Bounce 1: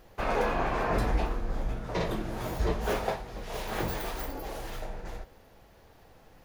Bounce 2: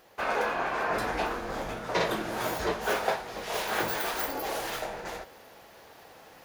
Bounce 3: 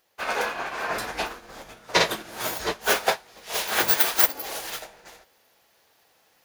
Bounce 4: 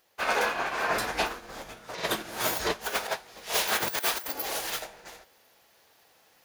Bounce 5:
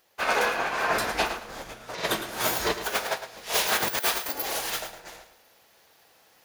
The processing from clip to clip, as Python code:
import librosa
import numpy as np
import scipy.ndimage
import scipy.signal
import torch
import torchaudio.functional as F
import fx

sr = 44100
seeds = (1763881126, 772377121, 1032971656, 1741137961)

y1 = fx.highpass(x, sr, hz=580.0, slope=6)
y1 = fx.dynamic_eq(y1, sr, hz=1500.0, q=7.3, threshold_db=-54.0, ratio=4.0, max_db=5)
y1 = fx.rider(y1, sr, range_db=4, speed_s=0.5)
y1 = y1 * librosa.db_to_amplitude(5.5)
y2 = fx.high_shelf(y1, sr, hz=2100.0, db=11.5)
y2 = fx.upward_expand(y2, sr, threshold_db=-35.0, expansion=2.5)
y2 = y2 * librosa.db_to_amplitude(6.0)
y3 = fx.over_compress(y2, sr, threshold_db=-25.0, ratio=-0.5)
y3 = y3 * librosa.db_to_amplitude(-1.5)
y4 = fx.echo_feedback(y3, sr, ms=109, feedback_pct=24, wet_db=-10.5)
y4 = y4 * librosa.db_to_amplitude(2.0)